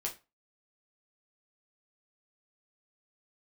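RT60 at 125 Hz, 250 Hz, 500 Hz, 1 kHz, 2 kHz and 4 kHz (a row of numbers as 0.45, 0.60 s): 0.30, 0.30, 0.25, 0.30, 0.25, 0.25 s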